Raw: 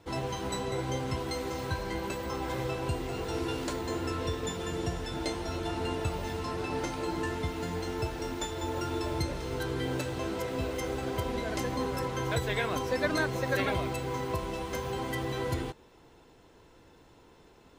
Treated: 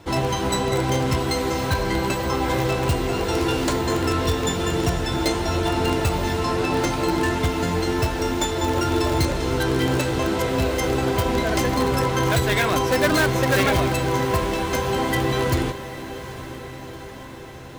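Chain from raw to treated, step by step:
notch filter 470 Hz, Q 12
in parallel at −7 dB: wrap-around overflow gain 24 dB
on the sum: feedback delay with all-pass diffusion 812 ms, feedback 65%, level −14 dB
level +8.5 dB

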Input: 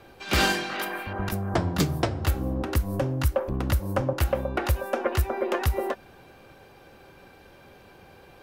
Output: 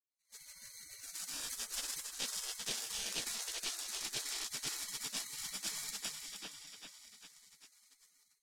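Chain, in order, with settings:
fade in at the beginning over 0.92 s
source passing by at 0:03.12, 12 m/s, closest 6.8 metres
sample-rate reduction 2,100 Hz, jitter 0%
high shelf with overshoot 1,900 Hz +10.5 dB, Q 1.5
echo with a time of its own for lows and highs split 2,400 Hz, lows 396 ms, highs 157 ms, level −5 dB
on a send at −7 dB: convolution reverb, pre-delay 3 ms
on the sum: automatic gain control gain up to 12.5 dB
gate on every frequency bin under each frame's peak −25 dB weak
low-pass filter 8,000 Hz 12 dB per octave
parametric band 990 Hz −10.5 dB 2.2 octaves
reversed playback
downward compressor 6 to 1, threshold −40 dBFS, peak gain reduction 12 dB
reversed playback
level +3.5 dB

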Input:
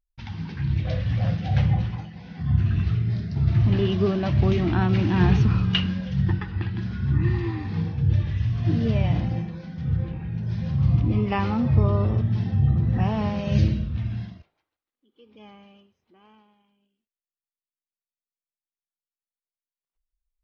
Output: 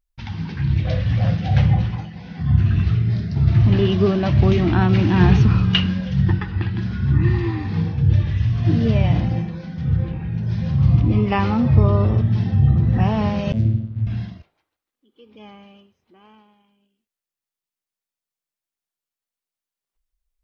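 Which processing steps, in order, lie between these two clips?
0:13.52–0:14.07: channel vocoder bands 16, saw 110 Hz
level +5 dB

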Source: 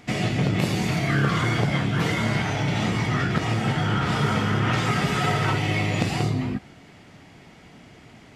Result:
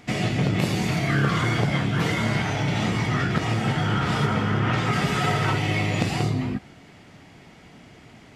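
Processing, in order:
0:04.25–0:04.92: high-shelf EQ 3,600 Hz → 5,800 Hz −8.5 dB

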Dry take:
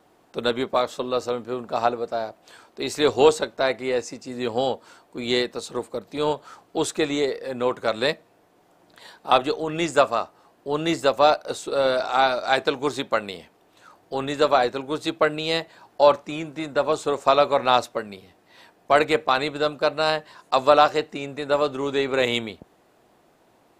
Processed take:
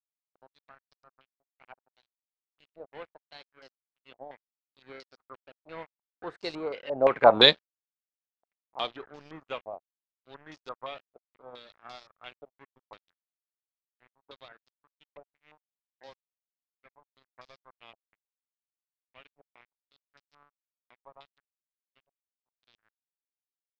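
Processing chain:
source passing by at 0:07.33, 27 m/s, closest 4 metres
dead-zone distortion −52 dBFS
low-pass on a step sequencer 5.8 Hz 690–5,100 Hz
level +3.5 dB

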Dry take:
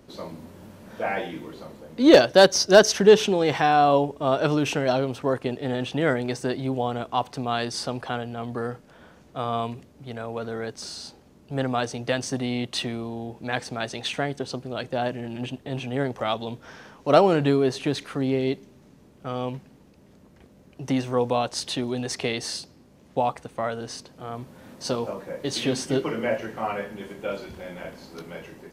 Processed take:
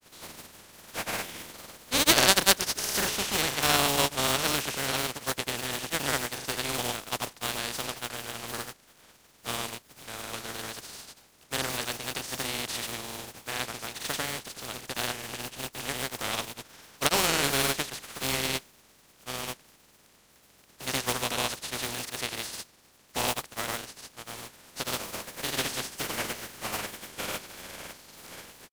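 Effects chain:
compressing power law on the bin magnitudes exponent 0.25
granular cloud, grains 20 per second, pitch spread up and down by 0 semitones
level −4 dB

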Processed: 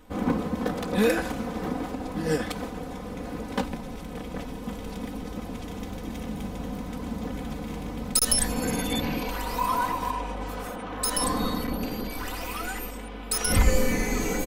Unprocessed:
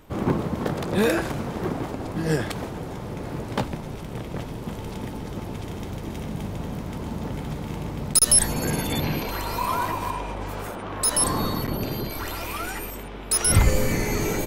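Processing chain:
comb filter 4 ms, depth 84%
level −4 dB

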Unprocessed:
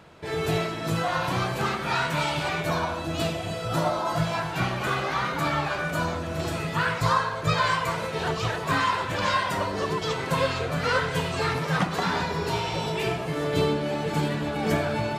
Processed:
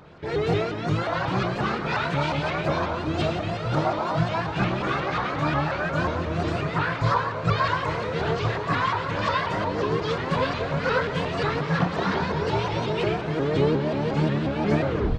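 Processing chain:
turntable brake at the end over 0.33 s
auto-filter notch sine 8.3 Hz 670–3,500 Hz
double-tracking delay 27 ms −7 dB
in parallel at +1 dB: speech leveller within 3 dB 0.5 s
on the sum: high-frequency loss of the air 160 metres
on a send: feedback delay with all-pass diffusion 1,560 ms, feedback 44%, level −12 dB
on the sum: pitch modulation by a square or saw wave saw up 5.6 Hz, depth 160 cents
level −4.5 dB

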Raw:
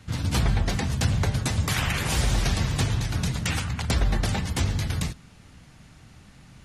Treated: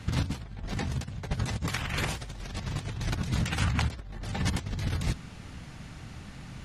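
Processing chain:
high-shelf EQ 7,400 Hz −7 dB
compressor whose output falls as the input rises −30 dBFS, ratio −0.5

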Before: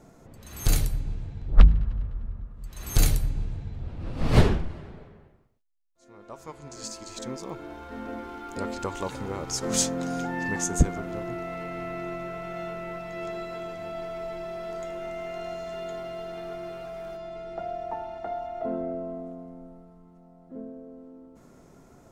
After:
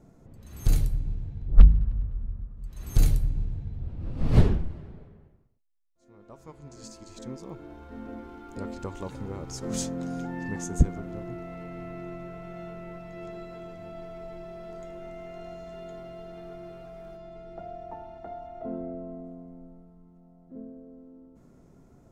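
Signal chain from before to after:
low-shelf EQ 410 Hz +11 dB
level −10 dB

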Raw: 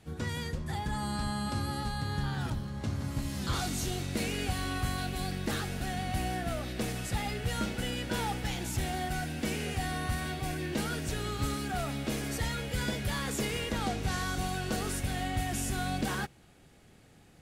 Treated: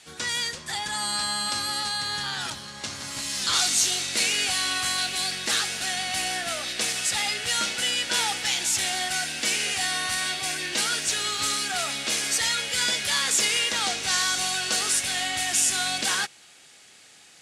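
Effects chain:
meter weighting curve ITU-R 468
level +5.5 dB

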